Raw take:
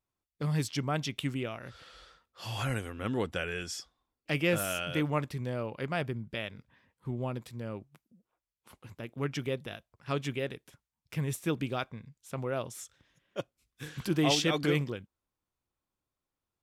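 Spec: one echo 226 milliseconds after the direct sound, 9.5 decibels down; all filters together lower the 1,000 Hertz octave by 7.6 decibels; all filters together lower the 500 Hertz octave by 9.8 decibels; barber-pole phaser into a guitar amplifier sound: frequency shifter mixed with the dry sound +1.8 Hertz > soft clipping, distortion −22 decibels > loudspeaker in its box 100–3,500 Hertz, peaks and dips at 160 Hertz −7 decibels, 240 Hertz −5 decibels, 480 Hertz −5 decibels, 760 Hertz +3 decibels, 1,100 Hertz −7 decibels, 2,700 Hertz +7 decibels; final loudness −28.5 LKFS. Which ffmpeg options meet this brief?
ffmpeg -i in.wav -filter_complex "[0:a]equalizer=frequency=500:width_type=o:gain=-8,equalizer=frequency=1000:width_type=o:gain=-7,aecho=1:1:226:0.335,asplit=2[link_01][link_02];[link_02]afreqshift=1.8[link_03];[link_01][link_03]amix=inputs=2:normalize=1,asoftclip=threshold=-24dB,highpass=100,equalizer=frequency=160:width_type=q:width=4:gain=-7,equalizer=frequency=240:width_type=q:width=4:gain=-5,equalizer=frequency=480:width_type=q:width=4:gain=-5,equalizer=frequency=760:width_type=q:width=4:gain=3,equalizer=frequency=1100:width_type=q:width=4:gain=-7,equalizer=frequency=2700:width_type=q:width=4:gain=7,lowpass=frequency=3500:width=0.5412,lowpass=frequency=3500:width=1.3066,volume=12dB" out.wav

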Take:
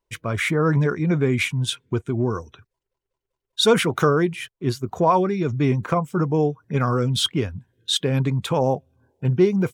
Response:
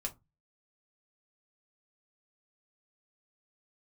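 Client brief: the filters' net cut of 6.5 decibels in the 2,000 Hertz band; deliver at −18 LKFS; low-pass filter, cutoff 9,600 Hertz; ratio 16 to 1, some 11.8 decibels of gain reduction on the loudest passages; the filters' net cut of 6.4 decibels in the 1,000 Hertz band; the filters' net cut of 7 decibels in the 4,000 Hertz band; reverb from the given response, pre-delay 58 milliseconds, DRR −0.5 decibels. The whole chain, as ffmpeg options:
-filter_complex "[0:a]lowpass=9600,equalizer=frequency=1000:width_type=o:gain=-6.5,equalizer=frequency=2000:width_type=o:gain=-4.5,equalizer=frequency=4000:width_type=o:gain=-6.5,acompressor=threshold=-24dB:ratio=16,asplit=2[link_01][link_02];[1:a]atrim=start_sample=2205,adelay=58[link_03];[link_02][link_03]afir=irnorm=-1:irlink=0,volume=0.5dB[link_04];[link_01][link_04]amix=inputs=2:normalize=0,volume=9dB"

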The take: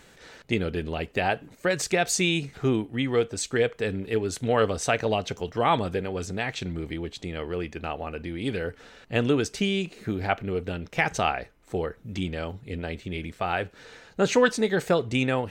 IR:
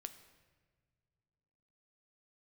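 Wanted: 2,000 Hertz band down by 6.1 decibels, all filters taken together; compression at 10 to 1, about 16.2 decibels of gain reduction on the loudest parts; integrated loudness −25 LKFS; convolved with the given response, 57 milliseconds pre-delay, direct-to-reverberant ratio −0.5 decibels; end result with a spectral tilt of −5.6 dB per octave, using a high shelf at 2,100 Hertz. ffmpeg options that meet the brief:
-filter_complex "[0:a]equalizer=frequency=2000:width_type=o:gain=-4.5,highshelf=frequency=2100:gain=-6,acompressor=threshold=-33dB:ratio=10,asplit=2[link_01][link_02];[1:a]atrim=start_sample=2205,adelay=57[link_03];[link_02][link_03]afir=irnorm=-1:irlink=0,volume=5dB[link_04];[link_01][link_04]amix=inputs=2:normalize=0,volume=10.5dB"

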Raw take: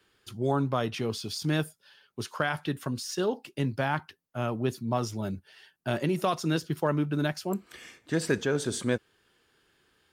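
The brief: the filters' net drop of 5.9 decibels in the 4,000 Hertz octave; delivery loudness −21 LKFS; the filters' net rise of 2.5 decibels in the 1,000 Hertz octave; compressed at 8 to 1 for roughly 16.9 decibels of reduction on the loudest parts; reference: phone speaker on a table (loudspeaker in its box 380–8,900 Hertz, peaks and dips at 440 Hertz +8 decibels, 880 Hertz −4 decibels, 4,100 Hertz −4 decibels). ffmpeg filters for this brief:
ffmpeg -i in.wav -af "equalizer=frequency=1000:width_type=o:gain=5.5,equalizer=frequency=4000:width_type=o:gain=-6.5,acompressor=threshold=-38dB:ratio=8,highpass=frequency=380:width=0.5412,highpass=frequency=380:width=1.3066,equalizer=frequency=440:width_type=q:width=4:gain=8,equalizer=frequency=880:width_type=q:width=4:gain=-4,equalizer=frequency=4100:width_type=q:width=4:gain=-4,lowpass=frequency=8900:width=0.5412,lowpass=frequency=8900:width=1.3066,volume=23.5dB" out.wav

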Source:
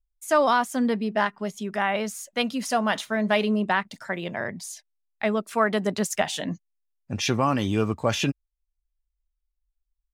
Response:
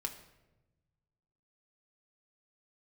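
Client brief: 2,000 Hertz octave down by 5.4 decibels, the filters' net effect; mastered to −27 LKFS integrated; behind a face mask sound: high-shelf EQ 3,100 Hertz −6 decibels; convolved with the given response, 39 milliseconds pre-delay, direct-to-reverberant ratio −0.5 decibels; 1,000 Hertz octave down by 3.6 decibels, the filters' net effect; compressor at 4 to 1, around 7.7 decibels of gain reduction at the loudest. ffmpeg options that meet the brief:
-filter_complex "[0:a]equalizer=frequency=1000:width_type=o:gain=-3,equalizer=frequency=2000:width_type=o:gain=-4,acompressor=threshold=-28dB:ratio=4,asplit=2[link_01][link_02];[1:a]atrim=start_sample=2205,adelay=39[link_03];[link_02][link_03]afir=irnorm=-1:irlink=0,volume=0.5dB[link_04];[link_01][link_04]amix=inputs=2:normalize=0,highshelf=frequency=3100:gain=-6,volume=3.5dB"

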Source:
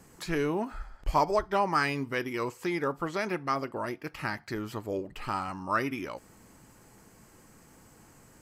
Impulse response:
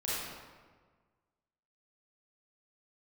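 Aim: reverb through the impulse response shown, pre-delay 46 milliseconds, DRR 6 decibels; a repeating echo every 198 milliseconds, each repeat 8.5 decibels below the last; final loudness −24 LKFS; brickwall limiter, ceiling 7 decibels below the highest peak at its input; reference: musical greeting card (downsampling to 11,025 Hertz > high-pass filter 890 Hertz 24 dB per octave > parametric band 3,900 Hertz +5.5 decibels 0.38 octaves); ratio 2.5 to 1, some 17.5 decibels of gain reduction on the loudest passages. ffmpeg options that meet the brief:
-filter_complex "[0:a]acompressor=threshold=-49dB:ratio=2.5,alimiter=level_in=12dB:limit=-24dB:level=0:latency=1,volume=-12dB,aecho=1:1:198|396|594|792:0.376|0.143|0.0543|0.0206,asplit=2[link_01][link_02];[1:a]atrim=start_sample=2205,adelay=46[link_03];[link_02][link_03]afir=irnorm=-1:irlink=0,volume=-11.5dB[link_04];[link_01][link_04]amix=inputs=2:normalize=0,aresample=11025,aresample=44100,highpass=frequency=890:width=0.5412,highpass=frequency=890:width=1.3066,equalizer=frequency=3900:width_type=o:width=0.38:gain=5.5,volume=27dB"

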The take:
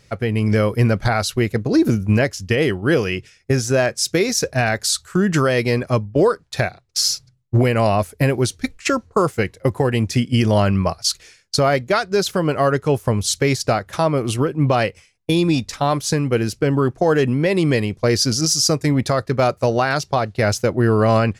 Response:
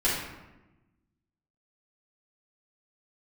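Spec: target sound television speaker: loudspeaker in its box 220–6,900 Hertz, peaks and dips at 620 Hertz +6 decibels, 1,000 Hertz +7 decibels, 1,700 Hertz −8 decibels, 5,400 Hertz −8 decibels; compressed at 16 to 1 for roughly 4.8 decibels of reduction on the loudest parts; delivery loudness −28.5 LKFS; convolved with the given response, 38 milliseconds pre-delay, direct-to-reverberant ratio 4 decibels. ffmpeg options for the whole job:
-filter_complex "[0:a]acompressor=threshold=-16dB:ratio=16,asplit=2[link_01][link_02];[1:a]atrim=start_sample=2205,adelay=38[link_03];[link_02][link_03]afir=irnorm=-1:irlink=0,volume=-16dB[link_04];[link_01][link_04]amix=inputs=2:normalize=0,highpass=frequency=220:width=0.5412,highpass=frequency=220:width=1.3066,equalizer=frequency=620:width_type=q:width=4:gain=6,equalizer=frequency=1000:width_type=q:width=4:gain=7,equalizer=frequency=1700:width_type=q:width=4:gain=-8,equalizer=frequency=5400:width_type=q:width=4:gain=-8,lowpass=frequency=6900:width=0.5412,lowpass=frequency=6900:width=1.3066,volume=-7.5dB"

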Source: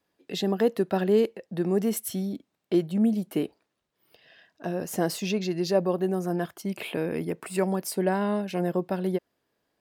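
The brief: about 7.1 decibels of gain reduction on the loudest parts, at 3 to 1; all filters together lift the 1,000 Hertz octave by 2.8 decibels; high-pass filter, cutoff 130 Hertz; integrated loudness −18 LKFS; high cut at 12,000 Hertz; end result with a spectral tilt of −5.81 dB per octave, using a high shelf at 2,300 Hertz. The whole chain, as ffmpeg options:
ffmpeg -i in.wav -af "highpass=130,lowpass=12000,equalizer=frequency=1000:width_type=o:gain=4.5,highshelf=frequency=2300:gain=-3.5,acompressor=threshold=-26dB:ratio=3,volume=13.5dB" out.wav

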